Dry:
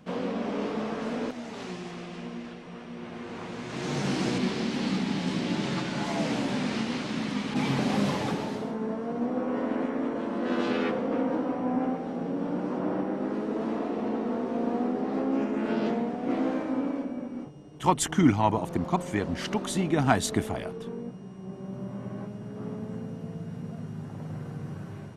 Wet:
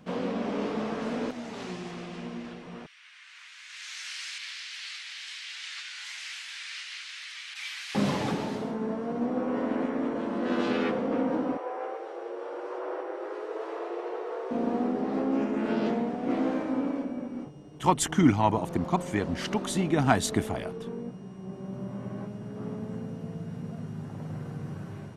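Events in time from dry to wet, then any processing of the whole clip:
0:02.86–0:07.95: inverse Chebyshev high-pass filter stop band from 510 Hz, stop band 60 dB
0:11.57–0:14.51: Chebyshev high-pass with heavy ripple 340 Hz, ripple 3 dB

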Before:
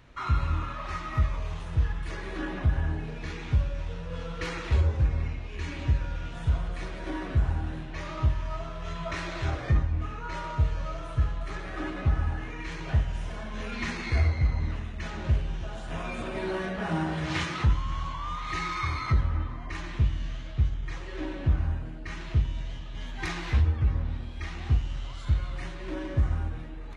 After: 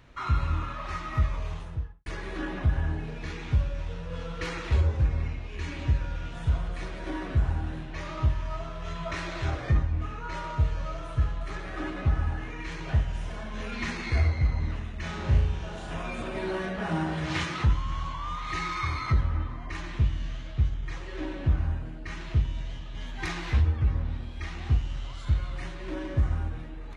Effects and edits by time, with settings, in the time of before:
0:01.47–0:02.06: fade out and dull
0:15.00–0:15.94: flutter between parallel walls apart 6.1 metres, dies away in 0.54 s

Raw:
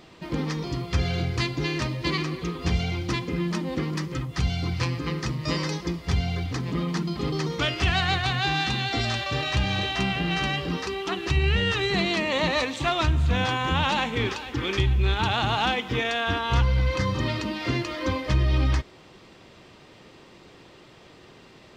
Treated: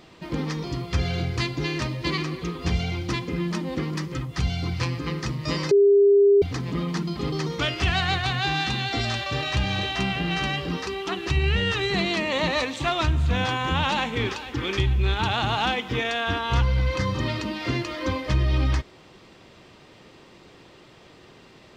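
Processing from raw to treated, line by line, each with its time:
0:05.71–0:06.42: beep over 402 Hz −12.5 dBFS

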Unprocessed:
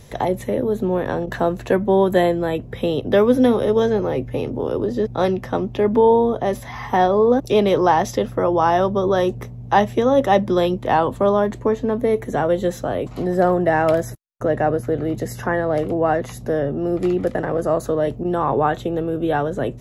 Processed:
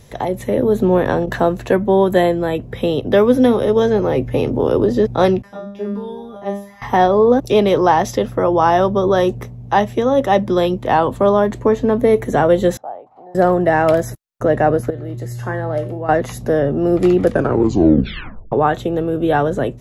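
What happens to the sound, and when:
0:05.42–0:06.82: tuned comb filter 200 Hz, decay 0.52 s, mix 100%
0:12.77–0:13.35: resonant band-pass 800 Hz, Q 8.7
0:14.90–0:16.09: tuned comb filter 120 Hz, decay 0.46 s, harmonics odd, mix 80%
0:17.25: tape stop 1.27 s
whole clip: automatic gain control; level −1 dB

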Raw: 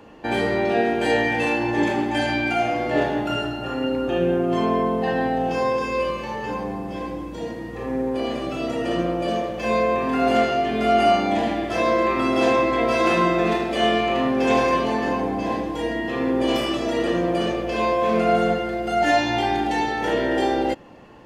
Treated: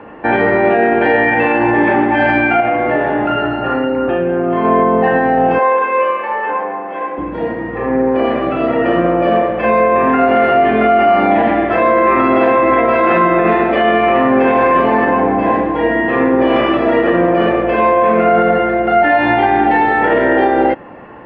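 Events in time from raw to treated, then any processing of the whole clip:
0:02.60–0:04.65: downward compressor, threshold −22 dBFS
0:05.59–0:07.18: band-pass filter 540–3,400 Hz
whole clip: low-pass filter 2,000 Hz 24 dB per octave; spectral tilt +2 dB per octave; boost into a limiter +16 dB; level −2.5 dB

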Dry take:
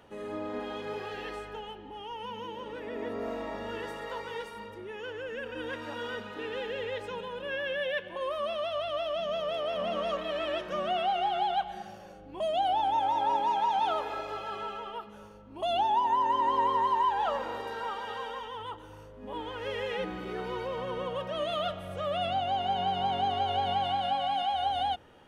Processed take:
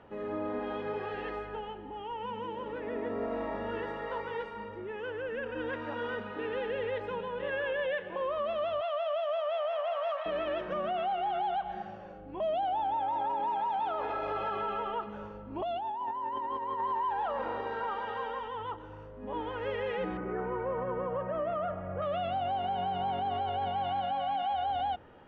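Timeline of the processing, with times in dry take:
0:06.87–0:07.34: delay throw 520 ms, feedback 45%, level −6 dB
0:08.81–0:10.26: Butterworth high-pass 560 Hz 96 dB per octave
0:13.98–0:16.80: compressor whose output falls as the input rises −34 dBFS
0:20.17–0:22.02: low-pass filter 2,000 Hz 24 dB per octave
whole clip: low-pass filter 2,100 Hz 12 dB per octave; brickwall limiter −27.5 dBFS; level +2 dB

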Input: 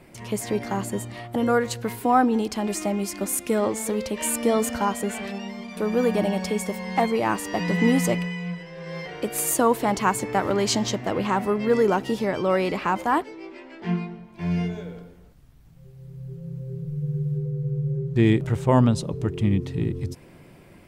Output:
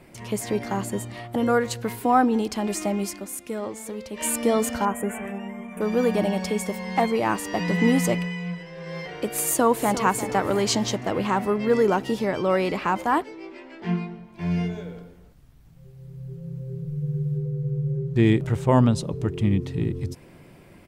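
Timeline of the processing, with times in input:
0:03.08–0:04.25: duck −8 dB, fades 0.14 s
0:04.85–0:05.81: Butterworth band-reject 4,500 Hz, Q 0.77
0:09.41–0:10.02: delay throw 350 ms, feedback 45%, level −11.5 dB

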